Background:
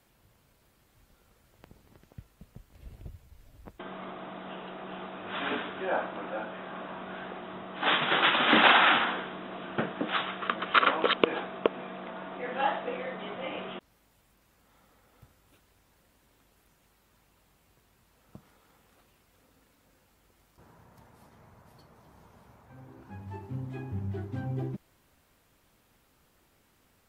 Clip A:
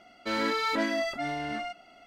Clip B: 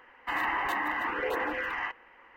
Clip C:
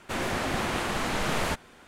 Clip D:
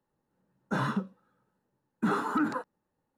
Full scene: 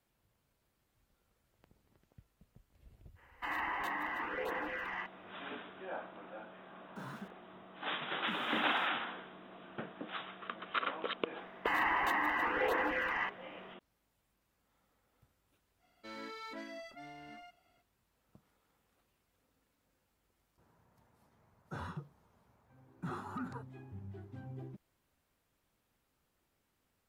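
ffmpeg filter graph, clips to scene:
-filter_complex "[2:a]asplit=2[s0][s1];[4:a]asplit=2[s2][s3];[0:a]volume=0.224[s4];[s2]aeval=exprs='val(0)*gte(abs(val(0)),0.0112)':c=same[s5];[s3]afreqshift=-47[s6];[s0]atrim=end=2.36,asetpts=PTS-STARTPTS,volume=0.422,afade=t=in:d=0.05,afade=t=out:st=2.31:d=0.05,adelay=3150[s7];[s5]atrim=end=3.17,asetpts=PTS-STARTPTS,volume=0.141,afade=t=in:d=0.004:c=hsin,afade=t=out:st=3.166:d=0.004:c=hsin,adelay=6250[s8];[s1]atrim=end=2.36,asetpts=PTS-STARTPTS,volume=0.794,afade=t=in:d=0.004:c=hsin,afade=t=out:st=2.356:d=0.004:c=hsin,adelay=501858S[s9];[1:a]atrim=end=2.06,asetpts=PTS-STARTPTS,volume=0.126,afade=t=in:d=0.05,afade=t=out:st=2.01:d=0.05,adelay=15780[s10];[s6]atrim=end=3.17,asetpts=PTS-STARTPTS,volume=0.211,afade=t=in:d=0.004:c=hsin,afade=t=out:st=3.166:d=0.004:c=hsin,adelay=926100S[s11];[s4][s7][s8][s9][s10][s11]amix=inputs=6:normalize=0"

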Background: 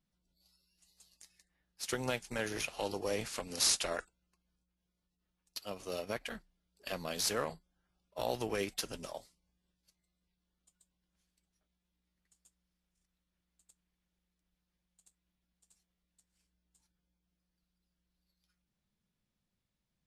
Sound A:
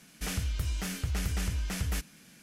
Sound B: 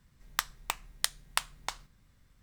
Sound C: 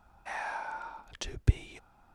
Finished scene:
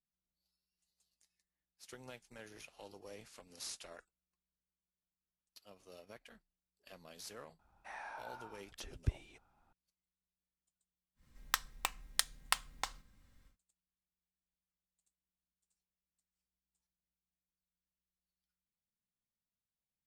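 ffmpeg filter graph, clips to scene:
-filter_complex "[0:a]volume=0.15[s0];[2:a]aecho=1:1:3.8:0.37[s1];[3:a]atrim=end=2.14,asetpts=PTS-STARTPTS,volume=0.282,afade=t=in:d=0.004:c=hsin,afade=t=out:st=2.136:d=0.004:c=hsin,adelay=7590[s2];[s1]atrim=end=2.42,asetpts=PTS-STARTPTS,volume=0.668,afade=t=in:d=0.1,afade=t=out:st=2.32:d=0.1,adelay=11150[s3];[s0][s2][s3]amix=inputs=3:normalize=0"

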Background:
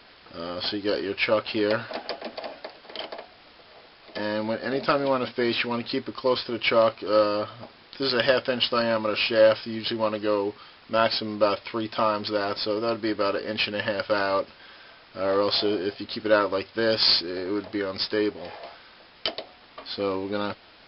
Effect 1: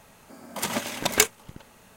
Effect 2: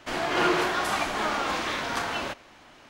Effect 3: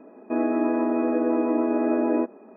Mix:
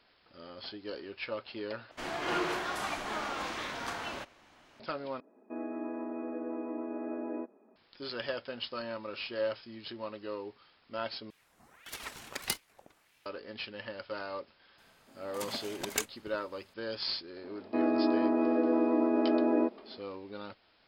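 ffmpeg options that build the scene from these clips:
-filter_complex "[3:a]asplit=2[s0][s1];[1:a]asplit=2[s2][s3];[0:a]volume=0.178[s4];[s2]aeval=exprs='val(0)*sin(2*PI*1500*n/s+1500*0.7/1.6*sin(2*PI*1.6*n/s))':c=same[s5];[s4]asplit=4[s6][s7][s8][s9];[s6]atrim=end=1.914[s10];[2:a]atrim=end=2.89,asetpts=PTS-STARTPTS,volume=0.376[s11];[s7]atrim=start=4.796:end=5.204[s12];[s0]atrim=end=2.56,asetpts=PTS-STARTPTS,volume=0.178[s13];[s8]atrim=start=7.756:end=11.304[s14];[s5]atrim=end=1.96,asetpts=PTS-STARTPTS,volume=0.266[s15];[s9]atrim=start=13.256[s16];[s3]atrim=end=1.96,asetpts=PTS-STARTPTS,volume=0.224,afade=t=in:d=0.004:c=hsin,afade=t=out:st=1.956:d=0.004:c=hsin,adelay=14780[s17];[s1]atrim=end=2.56,asetpts=PTS-STARTPTS,volume=0.596,afade=t=in:d=0.004:c=hsin,afade=t=out:st=2.556:d=0.004:c=hsin,adelay=17430[s18];[s10][s11]acrossfade=d=0.004:c1=hsin:c2=hsin[s19];[s19][s12]acrossfade=d=0.004:c1=hsin:c2=hsin[s20];[s20][s13]acrossfade=d=0.004:c1=hsin:c2=hsin[s21];[s21][s14]acrossfade=d=0.004:c1=hsin:c2=hsin[s22];[s22][s15]acrossfade=d=0.004:c1=hsin:c2=hsin[s23];[s23][s16]acrossfade=d=0.004:c1=hsin:c2=hsin[s24];[s24][s17][s18]amix=inputs=3:normalize=0"

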